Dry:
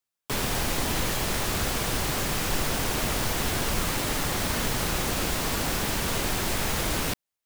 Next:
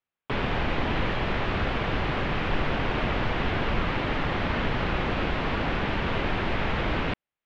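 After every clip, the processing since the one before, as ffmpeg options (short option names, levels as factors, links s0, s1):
-af "lowpass=f=3000:w=0.5412,lowpass=f=3000:w=1.3066,volume=1.26"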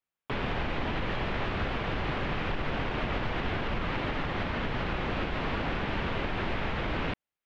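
-af "alimiter=limit=0.112:level=0:latency=1:release=89,volume=0.75"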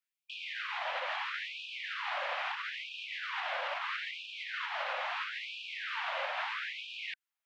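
-af "afftfilt=real='re*gte(b*sr/1024,490*pow(2400/490,0.5+0.5*sin(2*PI*0.76*pts/sr)))':imag='im*gte(b*sr/1024,490*pow(2400/490,0.5+0.5*sin(2*PI*0.76*pts/sr)))':win_size=1024:overlap=0.75"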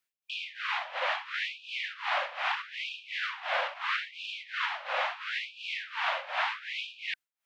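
-af "tremolo=f=2.8:d=0.87,volume=2.37"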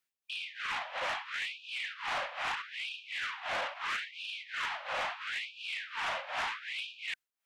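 -af "asoftclip=type=tanh:threshold=0.0398,volume=0.891"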